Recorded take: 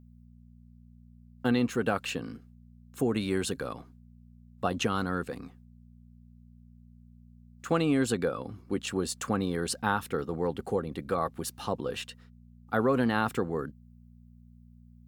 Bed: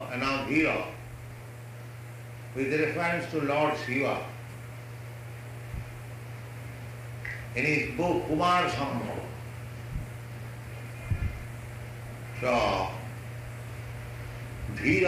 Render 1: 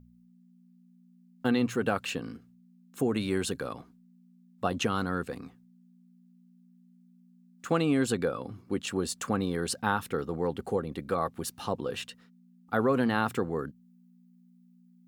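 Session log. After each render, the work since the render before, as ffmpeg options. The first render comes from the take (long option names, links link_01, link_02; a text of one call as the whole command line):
ffmpeg -i in.wav -af "bandreject=frequency=60:width_type=h:width=4,bandreject=frequency=120:width_type=h:width=4" out.wav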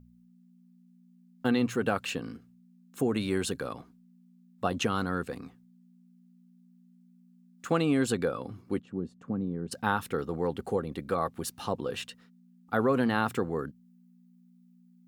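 ffmpeg -i in.wav -filter_complex "[0:a]asplit=3[link_01][link_02][link_03];[link_01]afade=type=out:start_time=8.79:duration=0.02[link_04];[link_02]bandpass=frequency=180:width_type=q:width=1.1,afade=type=in:start_time=8.79:duration=0.02,afade=type=out:start_time=9.71:duration=0.02[link_05];[link_03]afade=type=in:start_time=9.71:duration=0.02[link_06];[link_04][link_05][link_06]amix=inputs=3:normalize=0" out.wav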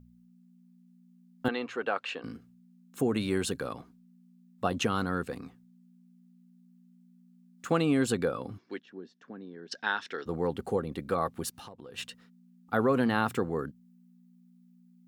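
ffmpeg -i in.wav -filter_complex "[0:a]asettb=1/sr,asplit=3[link_01][link_02][link_03];[link_01]atrim=end=1.484[link_04];[link_02]atrim=start=1.48:end=2.24,asetpts=PTS-STARTPTS,afade=type=in:duration=0.004:curve=qsin,afade=type=out:start_time=0.756:duration=0.004:curve=qsin,highpass=470,lowpass=3600[link_05];[link_03]atrim=start=2.236[link_06];[link_04][link_05]acrossfade=duration=0.004:curve1=hsin:curve2=qsin[link_07];[link_07][link_06]acrossfade=duration=0.004:curve1=qsin:curve2=hsin,asettb=1/sr,asplit=3[link_08][link_09][link_10];[link_08]atrim=end=8.584[link_11];[link_09]atrim=start=8.58:end=10.26,asetpts=PTS-STARTPTS,afade=type=in:duration=0.004:curve=qsin,afade=type=out:start_time=1.676:duration=0.004:curve=qsin,highpass=470,equalizer=frequency=520:width_type=q:width=4:gain=-7,equalizer=frequency=810:width_type=q:width=4:gain=-6,equalizer=frequency=1200:width_type=q:width=4:gain=-8,equalizer=frequency=1700:width_type=q:width=4:gain=8,equalizer=frequency=3500:width_type=q:width=4:gain=5,equalizer=frequency=5600:width_type=q:width=4:gain=7,lowpass=frequency=5800:width=0.5412,lowpass=frequency=5800:width=1.3066[link_12];[link_10]atrim=start=10.256[link_13];[link_11][link_12]acrossfade=duration=0.004:curve1=hsin:curve2=qsin[link_14];[link_14][link_13]acrossfade=duration=0.004:curve1=qsin:curve2=hsin,asplit=3[link_15][link_16][link_17];[link_15]afade=type=out:start_time=11.49:duration=0.02[link_18];[link_16]acompressor=threshold=-43dB:ratio=8:attack=3.2:release=140:knee=1:detection=peak,afade=type=in:start_time=11.49:duration=0.02,afade=type=out:start_time=11.97:duration=0.02[link_19];[link_17]afade=type=in:start_time=11.97:duration=0.02[link_20];[link_18][link_19][link_20]amix=inputs=3:normalize=0" out.wav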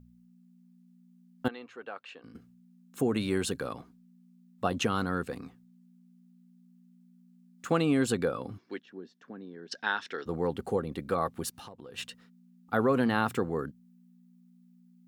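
ffmpeg -i in.wav -filter_complex "[0:a]asplit=3[link_01][link_02][link_03];[link_01]atrim=end=1.482[link_04];[link_02]atrim=start=1.478:end=2.352,asetpts=PTS-STARTPTS,volume=-11dB[link_05];[link_03]atrim=start=2.348[link_06];[link_04][link_05]acrossfade=duration=0.004:curve1=hsin:curve2=hsin[link_07];[link_07][link_06]acrossfade=duration=0.004:curve1=hsin:curve2=hsin" out.wav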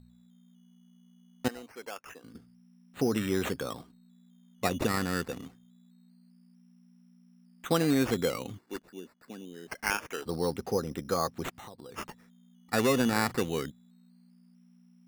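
ffmpeg -i in.wav -af "acrusher=samples=11:mix=1:aa=0.000001:lfo=1:lforange=6.6:lforate=0.25" out.wav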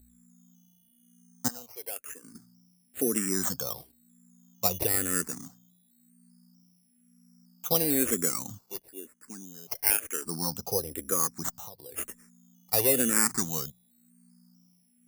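ffmpeg -i in.wav -filter_complex "[0:a]aexciter=amount=7.8:drive=3.3:freq=5300,asplit=2[link_01][link_02];[link_02]afreqshift=-1[link_03];[link_01][link_03]amix=inputs=2:normalize=1" out.wav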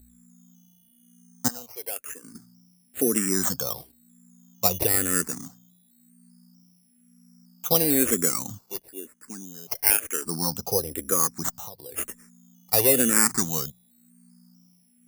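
ffmpeg -i in.wav -af "volume=4.5dB" out.wav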